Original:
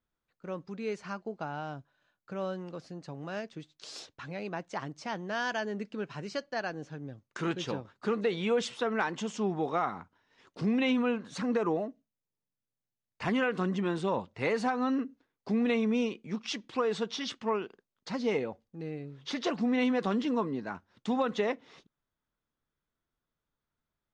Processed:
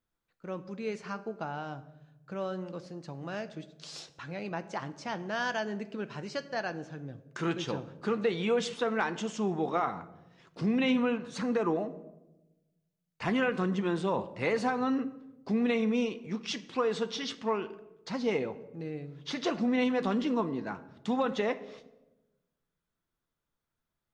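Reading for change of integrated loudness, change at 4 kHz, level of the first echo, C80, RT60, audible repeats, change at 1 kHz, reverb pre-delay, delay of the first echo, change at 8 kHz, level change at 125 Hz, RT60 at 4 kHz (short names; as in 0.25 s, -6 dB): +0.5 dB, +0.5 dB, none, 17.5 dB, 1.0 s, none, +0.5 dB, 6 ms, none, +0.5 dB, +0.5 dB, 0.60 s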